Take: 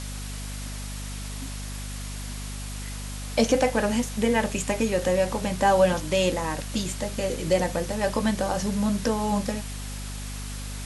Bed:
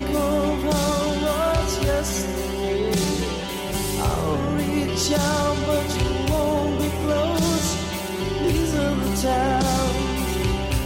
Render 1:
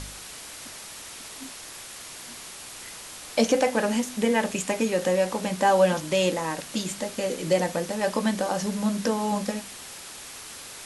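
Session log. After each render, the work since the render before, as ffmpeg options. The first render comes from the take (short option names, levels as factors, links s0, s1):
-af "bandreject=f=50:t=h:w=4,bandreject=f=100:t=h:w=4,bandreject=f=150:t=h:w=4,bandreject=f=200:t=h:w=4,bandreject=f=250:t=h:w=4"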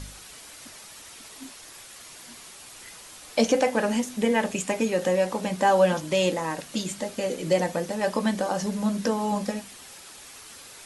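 -af "afftdn=nr=6:nf=-42"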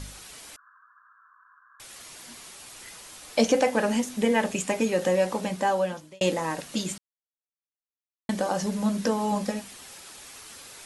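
-filter_complex "[0:a]asettb=1/sr,asplit=3[s0][s1][s2];[s0]atrim=end=0.564[s3];[s1]atrim=start=0.56:end=1.8,asetpts=PTS-STARTPTS,afade=t=in:d=0.004:c=qsin,afade=t=out:st=1.236:d=0.004:c=qsin,asuperpass=centerf=1300:order=20:qfactor=1.9[s4];[s2]atrim=start=1.796[s5];[s3][s4]acrossfade=d=0.004:c1=hsin:c2=qsin[s6];[s6][s5]acrossfade=d=0.004:c1=qsin:c2=hsin,asplit=4[s7][s8][s9][s10];[s7]atrim=end=6.21,asetpts=PTS-STARTPTS,afade=t=out:st=5.36:d=0.85[s11];[s8]atrim=start=6.21:end=6.98,asetpts=PTS-STARTPTS,afade=t=in:d=0.004:c=hsin,afade=t=out:st=0.766:d=0.004:c=hsin[s12];[s9]atrim=start=6.98:end=8.29,asetpts=PTS-STARTPTS,volume=0[s13];[s10]atrim=start=8.29,asetpts=PTS-STARTPTS,afade=t=in:d=0.004:c=hsin[s14];[s11][s12][s13][s14]concat=n=4:v=0:a=1"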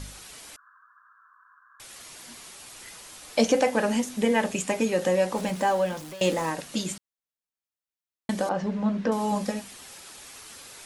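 -filter_complex "[0:a]asettb=1/sr,asplit=3[s0][s1][s2];[s0]atrim=end=5.364[s3];[s1]atrim=start=5.36:end=6.5,asetpts=PTS-STARTPTS,afade=t=in:d=0.004:c=qsin,afade=t=out:st=1.136:d=0.004:c=qsin,aeval=exprs='val(0)+0.5*0.0133*sgn(val(0))':c=same[s4];[s2]atrim=start=6.496[s5];[s3][s4]acrossfade=d=0.004:c1=hsin:c2=qsin[s6];[s6][s5]acrossfade=d=0.004:c1=qsin:c2=hsin,asettb=1/sr,asplit=3[s7][s8][s9];[s7]atrim=end=8.494[s10];[s8]atrim=start=8.49:end=9.12,asetpts=PTS-STARTPTS,afade=t=in:d=0.004:c=qsin,afade=t=out:st=0.626:d=0.004:c=qsin,lowpass=2500[s11];[s9]atrim=start=9.116[s12];[s10][s11]acrossfade=d=0.004:c1=hsin:c2=qsin[s13];[s13][s12]acrossfade=d=0.004:c1=qsin:c2=hsin"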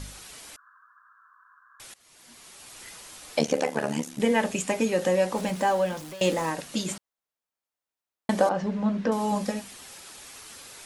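-filter_complex "[0:a]asettb=1/sr,asplit=3[s0][s1][s2];[s0]atrim=end=3.394[s3];[s1]atrim=start=3.39:end=4.2,asetpts=PTS-STARTPTS,afade=t=in:d=0.004:c=qsin,afade=t=out:st=0.806:d=0.004:c=qsin,tremolo=f=73:d=0.947[s4];[s2]atrim=start=4.196[s5];[s3][s4]acrossfade=d=0.004:c1=hsin:c2=qsin[s6];[s6][s5]acrossfade=d=0.004:c1=qsin:c2=hsin,asettb=1/sr,asplit=3[s7][s8][s9];[s7]atrim=end=6.884[s10];[s8]atrim=start=6.88:end=8.49,asetpts=PTS-STARTPTS,afade=t=in:d=0.004:c=qsin,afade=t=out:st=1.606:d=0.004:c=qsin,equalizer=f=770:w=0.54:g=7.5[s11];[s9]atrim=start=8.486[s12];[s10][s11]acrossfade=d=0.004:c1=hsin:c2=qsin[s13];[s13][s12]acrossfade=d=0.004:c1=qsin:c2=hsin,asplit=2[s14][s15];[s14]atrim=end=1.94,asetpts=PTS-STARTPTS,afade=t=out:st=1.936:d=0.004:c=hsin:silence=0.0891251[s16];[s15]atrim=start=1.94,asetpts=PTS-STARTPTS,afade=t=in:d=0.89:silence=0.0891251[s17];[s16][s17]concat=n=2:v=0:a=1"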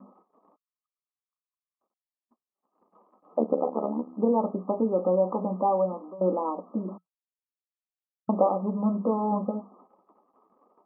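-af "afftfilt=real='re*between(b*sr/4096,180,1300)':imag='im*between(b*sr/4096,180,1300)':win_size=4096:overlap=0.75,agate=range=0.00316:threshold=0.00224:ratio=16:detection=peak"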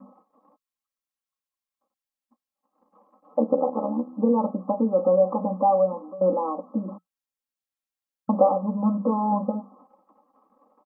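-af "equalizer=f=350:t=o:w=0.27:g=-7,aecho=1:1:3.7:0.88"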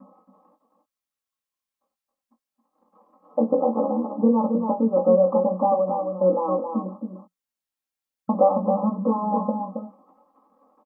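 -filter_complex "[0:a]asplit=2[s0][s1];[s1]adelay=22,volume=0.447[s2];[s0][s2]amix=inputs=2:normalize=0,aecho=1:1:272:0.501"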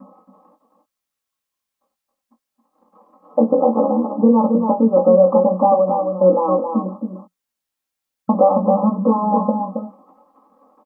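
-af "volume=2.11,alimiter=limit=0.708:level=0:latency=1"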